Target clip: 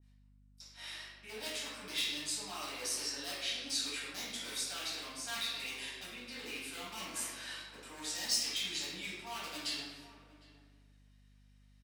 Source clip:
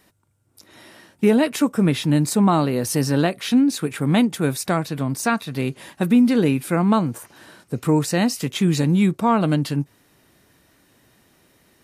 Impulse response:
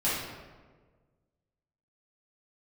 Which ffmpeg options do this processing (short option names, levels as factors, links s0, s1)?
-filter_complex "[0:a]agate=range=0.126:threshold=0.00447:ratio=16:detection=peak,highpass=290,lowpass=4700,areverse,acompressor=threshold=0.02:ratio=10,areverse,aeval=exprs='0.0316*(abs(mod(val(0)/0.0316+3,4)-2)-1)':c=same,aderivative,asplit=2[s0][s1];[s1]adelay=758,volume=0.158,highshelf=f=4000:g=-17.1[s2];[s0][s2]amix=inputs=2:normalize=0[s3];[1:a]atrim=start_sample=2205[s4];[s3][s4]afir=irnorm=-1:irlink=0,aeval=exprs='val(0)+0.000631*(sin(2*PI*50*n/s)+sin(2*PI*2*50*n/s)/2+sin(2*PI*3*50*n/s)/3+sin(2*PI*4*50*n/s)/4+sin(2*PI*5*50*n/s)/5)':c=same,adynamicequalizer=threshold=0.00251:dfrequency=2000:dqfactor=0.7:tfrequency=2000:tqfactor=0.7:attack=5:release=100:ratio=0.375:range=2:mode=boostabove:tftype=highshelf,volume=1.26"